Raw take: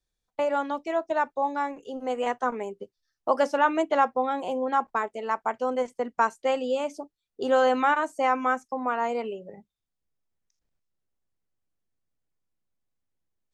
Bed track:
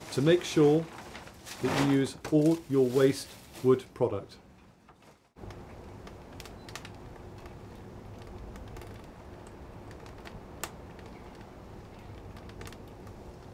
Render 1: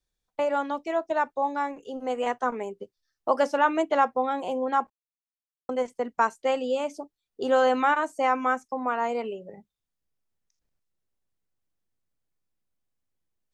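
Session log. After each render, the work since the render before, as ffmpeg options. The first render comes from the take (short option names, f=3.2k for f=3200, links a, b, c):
-filter_complex "[0:a]asplit=3[a][b][c];[a]atrim=end=4.9,asetpts=PTS-STARTPTS,afade=t=out:st=4.896:d=0.004:c=hsin[d];[b]atrim=start=4.9:end=5.69,asetpts=PTS-STARTPTS,volume=0[e];[c]atrim=start=5.69,asetpts=PTS-STARTPTS,afade=t=in:d=0.004:c=hsin[f];[d][e][f]concat=n=3:v=0:a=1"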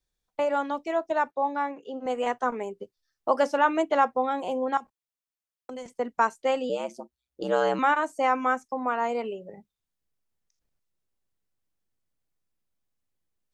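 -filter_complex "[0:a]asettb=1/sr,asplit=3[a][b][c];[a]atrim=end=1.314[d];[b]atrim=start=1.31:end=2.06,asetpts=PTS-STARTPTS,afade=t=in:d=0.004:c=qsin,afade=t=out:st=0.746:d=0.004:c=qsin,highpass=160,lowpass=4k[e];[c]atrim=start=2.056[f];[d][e]acrossfade=d=0.004:c1=hsin:c2=qsin[g];[g][f]acrossfade=d=0.004:c1=qsin:c2=hsin,asettb=1/sr,asplit=3[h][i][j];[h]atrim=end=4.774[k];[i]atrim=start=4.77:end=5.86,asetpts=PTS-STARTPTS,afade=t=in:d=0.004:c=qsin,afade=t=out:st=1.086:d=0.004:c=qsin,acrossover=split=160|3000[l][m][n];[m]acompressor=threshold=-36dB:ratio=6:attack=3.2:release=140:knee=2.83:detection=peak[o];[l][o][n]amix=inputs=3:normalize=0[p];[j]atrim=start=5.856[q];[k][p]acrossfade=d=0.004:c1=hsin:c2=qsin[r];[r][q]acrossfade=d=0.004:c1=qsin:c2=hsin,asettb=1/sr,asplit=3[s][t][u];[s]atrim=end=6.694[v];[t]atrim=start=6.69:end=7.79,asetpts=PTS-STARTPTS,afade=t=in:d=0.004:c=qsin,afade=t=out:st=1.096:d=0.004:c=qsin,aeval=exprs='val(0)*sin(2*PI*63*n/s)':c=same[w];[u]atrim=start=7.786[x];[v][w]acrossfade=d=0.004:c1=hsin:c2=qsin[y];[y][x]acrossfade=d=0.004:c1=qsin:c2=hsin"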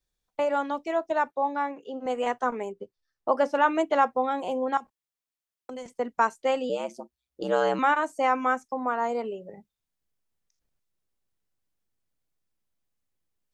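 -filter_complex "[0:a]asettb=1/sr,asplit=3[a][b][c];[a]atrim=end=2.724[d];[b]atrim=start=2.72:end=3.55,asetpts=PTS-STARTPTS,afade=t=in:d=0.004:c=qsin,afade=t=out:st=0.826:d=0.004:c=qsin,highshelf=f=3.2k:g=-9.5[e];[c]atrim=start=3.546[f];[d][e]acrossfade=d=0.004:c1=hsin:c2=qsin[g];[g][f]acrossfade=d=0.004:c1=qsin:c2=hsin,asettb=1/sr,asplit=3[h][i][j];[h]atrim=end=8.744[k];[i]atrim=start=8.74:end=9.34,asetpts=PTS-STARTPTS,afade=t=in:d=0.004:c=qsin,afade=t=out:st=0.596:d=0.004:c=qsin,equalizer=f=2.6k:w=2.5:g=-7.5[l];[j]atrim=start=9.336[m];[k][l]acrossfade=d=0.004:c1=hsin:c2=qsin[n];[n][m]acrossfade=d=0.004:c1=qsin:c2=hsin"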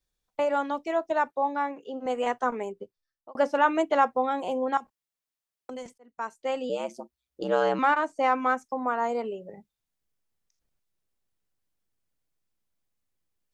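-filter_complex "[0:a]asettb=1/sr,asplit=3[a][b][c];[a]atrim=end=7.444[d];[b]atrim=start=7.44:end=8.58,asetpts=PTS-STARTPTS,afade=t=in:d=0.004:c=qsin,afade=t=out:st=1.136:d=0.004:c=qsin,adynamicsmooth=sensitivity=2.5:basefreq=5.6k[e];[c]atrim=start=8.576[f];[d][e]acrossfade=d=0.004:c1=hsin:c2=qsin[g];[g][f]acrossfade=d=0.004:c1=qsin:c2=hsin,asplit=3[h][i][j];[h]atrim=end=3.35,asetpts=PTS-STARTPTS,afade=t=out:st=2.77:d=0.58[k];[i]atrim=start=3.35:end=5.98,asetpts=PTS-STARTPTS,afade=t=in:d=0.004:c=hsin,afade=t=out:st=2.626:d=0.004:c=hsin[l];[j]atrim=start=5.98,asetpts=PTS-STARTPTS,afade=t=in:d=0.85[m];[k][l][m]concat=n=3:v=0:a=1"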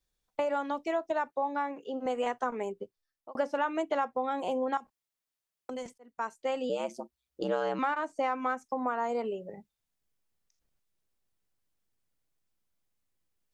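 -af "acompressor=threshold=-27dB:ratio=4"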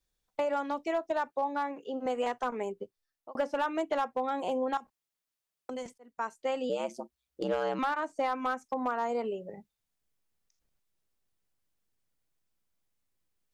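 -af "asoftclip=type=hard:threshold=-22dB"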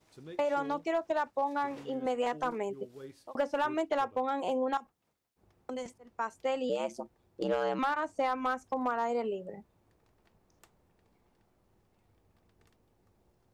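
-filter_complex "[1:a]volume=-23.5dB[a];[0:a][a]amix=inputs=2:normalize=0"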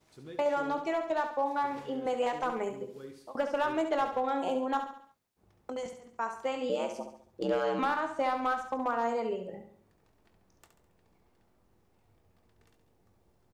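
-filter_complex "[0:a]asplit=2[a][b];[b]adelay=22,volume=-12dB[c];[a][c]amix=inputs=2:normalize=0,asplit=2[d][e];[e]aecho=0:1:69|138|207|276|345:0.398|0.183|0.0842|0.0388|0.0178[f];[d][f]amix=inputs=2:normalize=0"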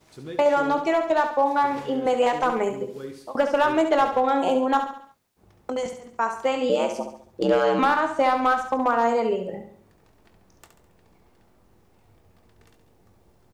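-af "volume=9.5dB"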